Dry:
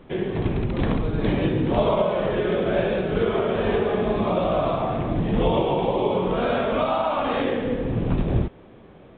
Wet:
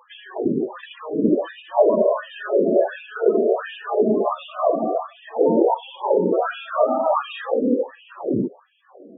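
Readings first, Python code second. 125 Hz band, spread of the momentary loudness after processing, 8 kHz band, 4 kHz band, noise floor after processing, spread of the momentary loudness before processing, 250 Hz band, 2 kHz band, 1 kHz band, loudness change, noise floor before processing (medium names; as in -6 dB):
-12.5 dB, 9 LU, no reading, -4.0 dB, -52 dBFS, 4 LU, +1.0 dB, -2.0 dB, +1.5 dB, +2.0 dB, -47 dBFS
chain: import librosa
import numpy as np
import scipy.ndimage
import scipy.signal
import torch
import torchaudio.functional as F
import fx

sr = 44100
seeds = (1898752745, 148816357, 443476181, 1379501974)

y = fx.filter_lfo_highpass(x, sr, shape='sine', hz=1.4, low_hz=240.0, high_hz=2600.0, q=2.6)
y = fx.peak_eq(y, sr, hz=2200.0, db=-11.5, octaves=0.28)
y = fx.spec_topn(y, sr, count=16)
y = y * librosa.db_to_amplitude(1.5)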